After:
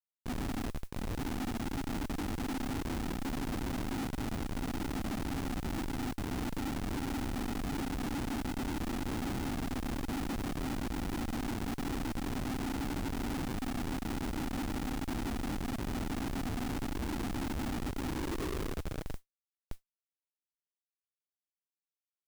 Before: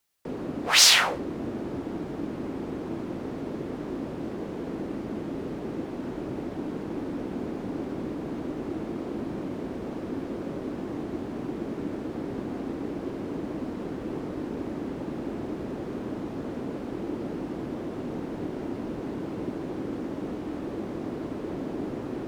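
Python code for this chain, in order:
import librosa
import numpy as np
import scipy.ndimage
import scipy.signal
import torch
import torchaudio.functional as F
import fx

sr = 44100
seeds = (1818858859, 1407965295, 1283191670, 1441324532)

y = fx.filter_sweep_bandpass(x, sr, from_hz=250.0, to_hz=1700.0, start_s=17.9, end_s=20.31, q=3.1)
y = fx.schmitt(y, sr, flips_db=-37.0)
y = fx.mod_noise(y, sr, seeds[0], snr_db=24)
y = y * 10.0 ** (3.5 / 20.0)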